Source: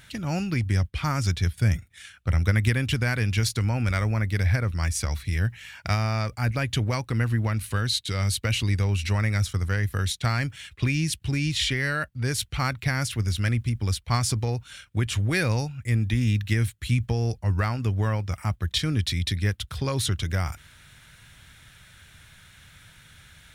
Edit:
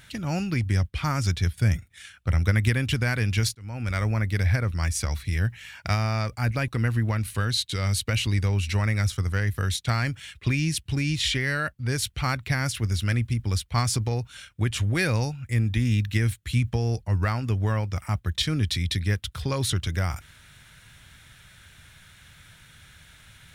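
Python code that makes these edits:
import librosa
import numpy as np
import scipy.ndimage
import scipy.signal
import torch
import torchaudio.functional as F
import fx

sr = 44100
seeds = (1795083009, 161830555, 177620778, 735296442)

y = fx.edit(x, sr, fx.fade_in_span(start_s=3.55, length_s=0.5),
    fx.cut(start_s=6.68, length_s=0.36), tone=tone)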